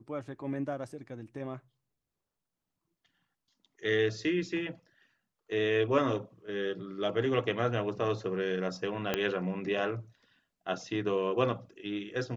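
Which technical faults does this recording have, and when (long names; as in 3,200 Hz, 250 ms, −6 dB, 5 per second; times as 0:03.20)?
0:09.14: click −13 dBFS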